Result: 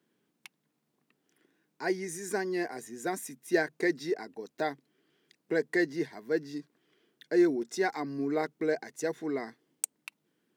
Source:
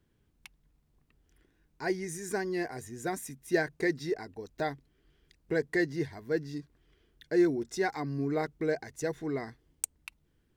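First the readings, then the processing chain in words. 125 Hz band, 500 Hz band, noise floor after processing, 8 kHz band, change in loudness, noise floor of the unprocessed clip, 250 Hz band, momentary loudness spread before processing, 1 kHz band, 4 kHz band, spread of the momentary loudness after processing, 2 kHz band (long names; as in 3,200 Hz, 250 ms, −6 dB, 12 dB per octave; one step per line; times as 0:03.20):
−7.0 dB, +1.0 dB, −79 dBFS, +1.0 dB, +1.0 dB, −72 dBFS, +0.5 dB, 10 LU, +1.0 dB, +1.0 dB, 10 LU, +1.0 dB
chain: high-pass filter 190 Hz 24 dB per octave
level +1 dB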